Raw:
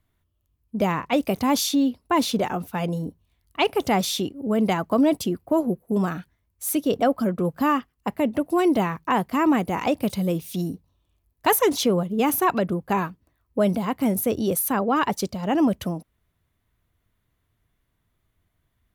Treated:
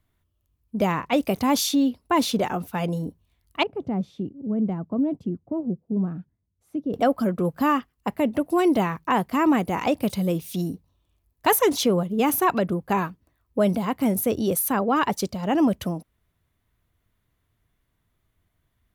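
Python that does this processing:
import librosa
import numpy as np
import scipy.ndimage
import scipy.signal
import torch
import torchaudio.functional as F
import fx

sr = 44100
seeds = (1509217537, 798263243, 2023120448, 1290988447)

y = fx.bandpass_q(x, sr, hz=160.0, q=1.0, at=(3.63, 6.94))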